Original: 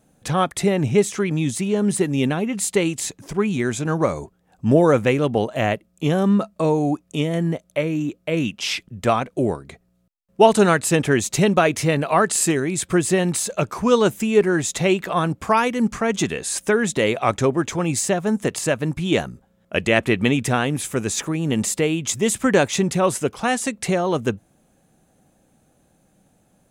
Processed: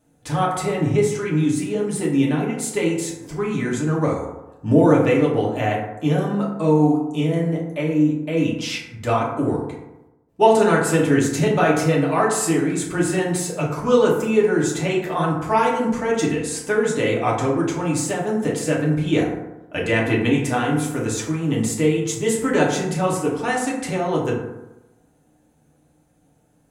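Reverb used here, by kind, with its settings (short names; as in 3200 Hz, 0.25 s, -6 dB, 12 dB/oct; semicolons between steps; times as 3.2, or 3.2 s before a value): FDN reverb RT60 0.99 s, low-frequency decay 1×, high-frequency decay 0.4×, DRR -4.5 dB; gain -7 dB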